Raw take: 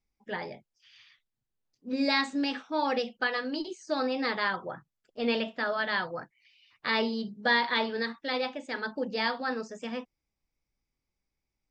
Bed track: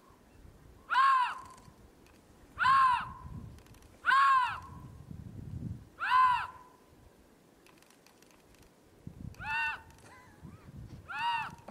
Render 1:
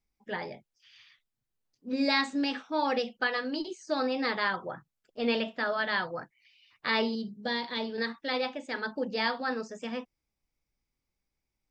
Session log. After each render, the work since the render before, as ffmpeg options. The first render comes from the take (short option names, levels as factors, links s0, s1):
-filter_complex "[0:a]asettb=1/sr,asplit=3[s0][s1][s2];[s0]atrim=end=7.154[s3];[s1]atrim=start=7.15:end=7.98,asetpts=PTS-STARTPTS,afade=t=in:d=0.004:c=qsin,afade=t=out:st=0.826:d=0.004:c=qsin,equalizer=f=1400:t=o:w=2.1:g=-12[s4];[s2]atrim=start=7.976[s5];[s3][s4]acrossfade=d=0.004:c1=hsin:c2=qsin[s6];[s6][s5]acrossfade=d=0.004:c1=qsin:c2=hsin"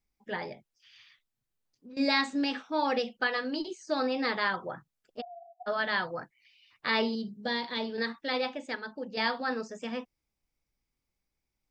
-filter_complex "[0:a]asettb=1/sr,asplit=3[s0][s1][s2];[s0]atrim=end=0.534[s3];[s1]atrim=start=0.53:end=1.97,asetpts=PTS-STARTPTS,afade=t=in:d=0.004:c=qsin,afade=t=out:st=1.436:d=0.004:c=qsin,acompressor=threshold=0.00501:ratio=6:attack=3.2:release=140:knee=1:detection=peak[s4];[s2]atrim=start=1.966[s5];[s3][s4]acrossfade=d=0.004:c1=hsin:c2=qsin[s6];[s6][s5]acrossfade=d=0.004:c1=qsin:c2=hsin,asplit=3[s7][s8][s9];[s7]afade=t=out:st=5.2:d=0.02[s10];[s8]asuperpass=centerf=730:order=20:qfactor=6.7,afade=t=in:st=5.2:d=0.02,afade=t=out:st=5.66:d=0.02[s11];[s9]afade=t=in:st=5.66:d=0.02[s12];[s10][s11][s12]amix=inputs=3:normalize=0,asplit=3[s13][s14][s15];[s13]atrim=end=8.752[s16];[s14]atrim=start=8.748:end=9.172,asetpts=PTS-STARTPTS,volume=0.501[s17];[s15]atrim=start=9.168[s18];[s16][s17]acrossfade=d=0.004:c1=hsin:c2=hsin[s19];[s19][s18]acrossfade=d=0.004:c1=hsin:c2=hsin"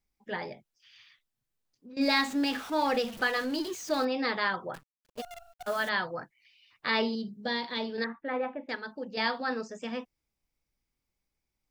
-filter_complex "[0:a]asettb=1/sr,asplit=3[s0][s1][s2];[s0]atrim=end=2.014[s3];[s1]atrim=start=2.01:end=4.05,asetpts=PTS-STARTPTS,afade=t=in:d=0.004:c=qsin,afade=t=out:st=2.036:d=0.004:c=qsin,aeval=exprs='val(0)+0.5*0.0119*sgn(val(0))':c=same[s4];[s2]atrim=start=4.046[s5];[s3][s4]acrossfade=d=0.004:c1=hsin:c2=qsin[s6];[s6][s5]acrossfade=d=0.004:c1=qsin:c2=hsin,asettb=1/sr,asplit=3[s7][s8][s9];[s7]atrim=end=4.744[s10];[s8]atrim=start=4.74:end=5.89,asetpts=PTS-STARTPTS,afade=t=in:d=0.004:c=qsin,afade=t=out:st=1.146:d=0.004:c=qsin,acrusher=bits=8:dc=4:mix=0:aa=0.000001[s11];[s9]atrim=start=5.886[s12];[s10][s11]acrossfade=d=0.004:c1=hsin:c2=qsin[s13];[s13][s12]acrossfade=d=0.004:c1=qsin:c2=hsin,asettb=1/sr,asplit=3[s14][s15][s16];[s14]atrim=end=8.044[s17];[s15]atrim=start=8.04:end=8.69,asetpts=PTS-STARTPTS,afade=t=in:d=0.004:c=qsin,afade=t=out:st=0.646:d=0.004:c=qsin,lowpass=f=1900:w=0.5412,lowpass=f=1900:w=1.3066[s18];[s16]atrim=start=8.686[s19];[s17][s18]acrossfade=d=0.004:c1=hsin:c2=qsin[s20];[s20][s19]acrossfade=d=0.004:c1=qsin:c2=hsin"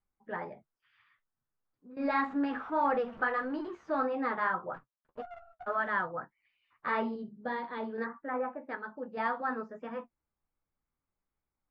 -af "flanger=delay=9.6:depth=3.8:regen=-38:speed=1.7:shape=triangular,lowpass=f=1300:t=q:w=2"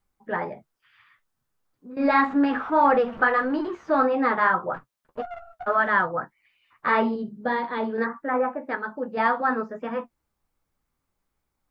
-af "volume=3.16"